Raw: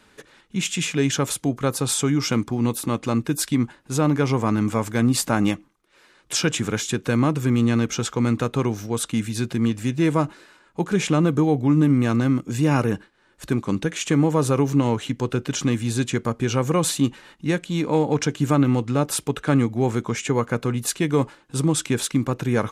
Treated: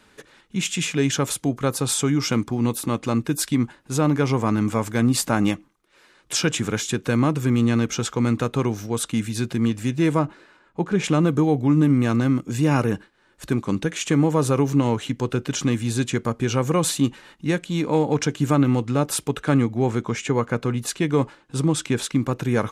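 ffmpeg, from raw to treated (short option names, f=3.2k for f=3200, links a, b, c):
-filter_complex "[0:a]asettb=1/sr,asplit=3[a][b][c];[a]atrim=end=10.194[d];[b]atrim=start=10.19:end=11.04,asetpts=PTS-STARTPTS,afade=t=in:d=0.004:c=qsin,afade=t=out:st=0.846:d=0.004:c=qsin,lowpass=f=2.5k:p=1[e];[c]atrim=start=11.036[f];[d][e]acrossfade=d=0.004:c1=hsin:c2=qsin[g];[g][f]acrossfade=d=0.004:c1=qsin:c2=hsin,asettb=1/sr,asplit=3[h][i][j];[h]atrim=end=19.584[k];[i]atrim=start=19.58:end=22.24,asetpts=PTS-STARTPTS,afade=t=in:d=0.004:c=qsin,afade=t=out:st=2.656:d=0.004:c=qsin,highshelf=f=9.8k:g=-10[l];[j]atrim=start=22.236[m];[k][l]acrossfade=d=0.004:c1=hsin:c2=qsin[n];[n][m]acrossfade=d=0.004:c1=qsin:c2=hsin"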